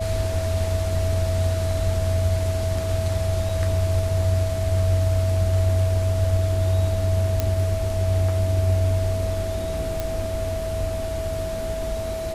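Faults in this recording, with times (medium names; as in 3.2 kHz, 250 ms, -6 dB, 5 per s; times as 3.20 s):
whine 650 Hz -27 dBFS
3.49 s: dropout 3.6 ms
7.40 s: pop -8 dBFS
10.00 s: pop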